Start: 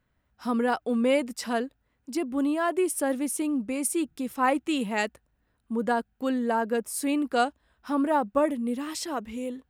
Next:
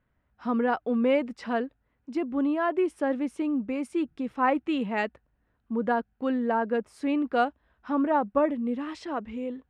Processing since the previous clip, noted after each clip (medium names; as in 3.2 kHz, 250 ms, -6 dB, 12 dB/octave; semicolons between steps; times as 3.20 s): low-pass 2.5 kHz 12 dB/octave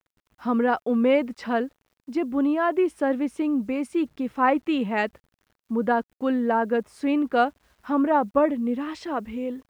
bit crusher 11-bit; trim +3.5 dB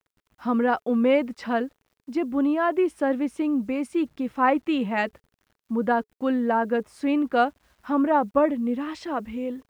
band-stop 430 Hz, Q 12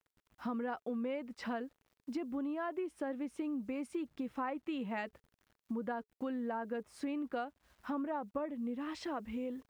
compression 6:1, threshold -31 dBFS, peak gain reduction 15 dB; trim -5 dB